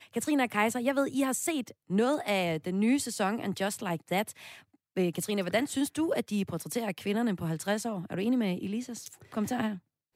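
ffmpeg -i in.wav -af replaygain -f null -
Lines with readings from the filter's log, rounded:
track_gain = +10.8 dB
track_peak = 0.159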